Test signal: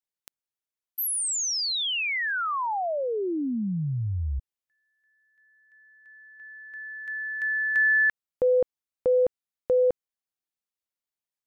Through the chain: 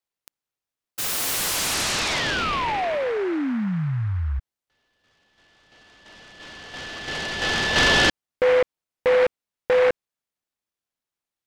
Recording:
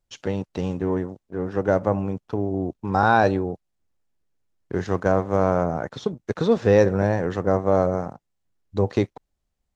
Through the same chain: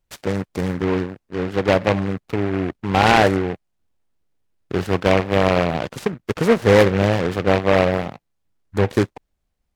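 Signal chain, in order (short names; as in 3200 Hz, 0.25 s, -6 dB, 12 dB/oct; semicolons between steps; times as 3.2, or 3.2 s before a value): noise-modulated delay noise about 1300 Hz, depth 0.1 ms; gain +3.5 dB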